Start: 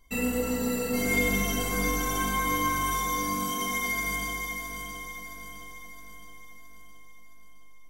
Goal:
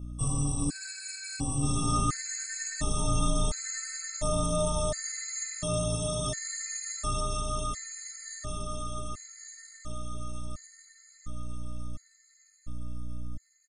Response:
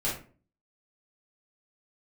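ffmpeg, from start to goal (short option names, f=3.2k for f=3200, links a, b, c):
-filter_complex "[0:a]lowshelf=f=150:g=11,asplit=2[a][b];[b]acompressor=threshold=-32dB:ratio=6,volume=0.5dB[c];[a][c]amix=inputs=2:normalize=0,flanger=delay=4.2:depth=6.3:regen=-40:speed=0.45:shape=triangular,asetrate=25442,aresample=44100,acrossover=split=550|6000[d][e][f];[f]crystalizer=i=3:c=0[g];[d][e][g]amix=inputs=3:normalize=0,aeval=exprs='val(0)+0.0158*(sin(2*PI*60*n/s)+sin(2*PI*2*60*n/s)/2+sin(2*PI*3*60*n/s)/3+sin(2*PI*4*60*n/s)/4+sin(2*PI*5*60*n/s)/5)':c=same,afftfilt=real='re*gt(sin(2*PI*0.71*pts/sr)*(1-2*mod(floor(b*sr/1024/1300),2)),0)':imag='im*gt(sin(2*PI*0.71*pts/sr)*(1-2*mod(floor(b*sr/1024/1300),2)),0)':win_size=1024:overlap=0.75,volume=-2dB"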